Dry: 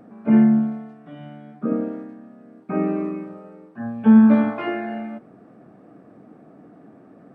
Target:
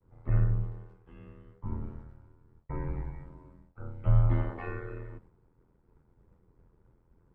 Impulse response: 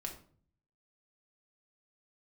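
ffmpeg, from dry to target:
-af "agate=range=-33dB:threshold=-41dB:ratio=3:detection=peak,aeval=exprs='val(0)*sin(2*PI*42*n/s)':channel_layout=same,afreqshift=-290,volume=-7.5dB"

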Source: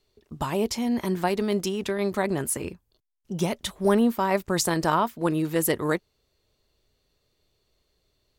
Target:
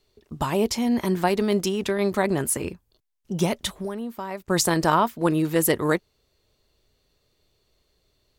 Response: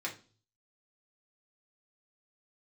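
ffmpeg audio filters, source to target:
-filter_complex "[0:a]asplit=3[link_01][link_02][link_03];[link_01]afade=type=out:start_time=3.78:duration=0.02[link_04];[link_02]acompressor=threshold=-33dB:ratio=5,afade=type=in:start_time=3.78:duration=0.02,afade=type=out:start_time=4.49:duration=0.02[link_05];[link_03]afade=type=in:start_time=4.49:duration=0.02[link_06];[link_04][link_05][link_06]amix=inputs=3:normalize=0,volume=3dB"

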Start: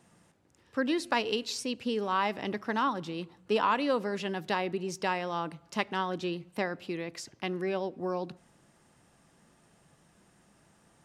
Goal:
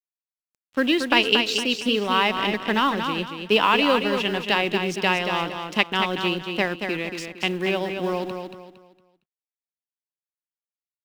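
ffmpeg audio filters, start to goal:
ffmpeg -i in.wav -filter_complex "[0:a]highpass=140,aeval=exprs='sgn(val(0))*max(abs(val(0))-0.00376,0)':channel_layout=same,lowshelf=frequency=420:gain=5,acrusher=bits=8:mode=log:mix=0:aa=0.000001,equalizer=frequency=2800:width_type=o:width=1:gain=11.5,asplit=2[link_01][link_02];[link_02]aecho=0:1:230|460|690|920:0.473|0.151|0.0485|0.0155[link_03];[link_01][link_03]amix=inputs=2:normalize=0,volume=5dB" out.wav

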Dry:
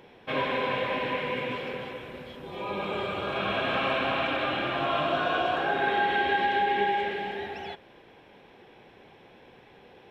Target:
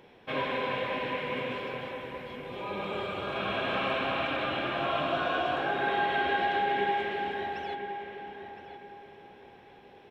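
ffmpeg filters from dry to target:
ffmpeg -i in.wav -filter_complex "[0:a]asplit=2[link_01][link_02];[link_02]adelay=1015,lowpass=frequency=2200:poles=1,volume=-8dB,asplit=2[link_03][link_04];[link_04]adelay=1015,lowpass=frequency=2200:poles=1,volume=0.3,asplit=2[link_05][link_06];[link_06]adelay=1015,lowpass=frequency=2200:poles=1,volume=0.3,asplit=2[link_07][link_08];[link_08]adelay=1015,lowpass=frequency=2200:poles=1,volume=0.3[link_09];[link_01][link_03][link_05][link_07][link_09]amix=inputs=5:normalize=0,volume=-3dB" out.wav

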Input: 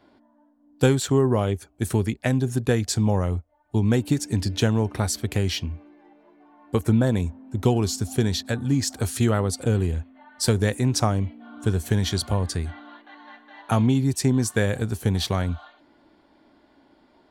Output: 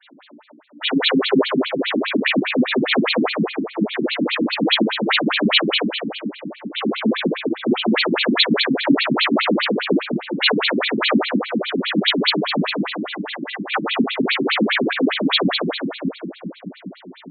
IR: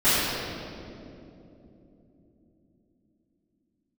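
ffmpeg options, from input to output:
-filter_complex "[0:a]equalizer=frequency=64:width_type=o:width=2.1:gain=-8.5,acompressor=threshold=-33dB:ratio=2.5,crystalizer=i=9.5:c=0,aeval=exprs='max(val(0),0)':channel_layout=same[link_01];[1:a]atrim=start_sample=2205[link_02];[link_01][link_02]afir=irnorm=-1:irlink=0,afftfilt=real='re*between(b*sr/1024,220*pow(3200/220,0.5+0.5*sin(2*PI*4.9*pts/sr))/1.41,220*pow(3200/220,0.5+0.5*sin(2*PI*4.9*pts/sr))*1.41)':imag='im*between(b*sr/1024,220*pow(3200/220,0.5+0.5*sin(2*PI*4.9*pts/sr))/1.41,220*pow(3200/220,0.5+0.5*sin(2*PI*4.9*pts/sr))*1.41)':win_size=1024:overlap=0.75,volume=1.5dB"

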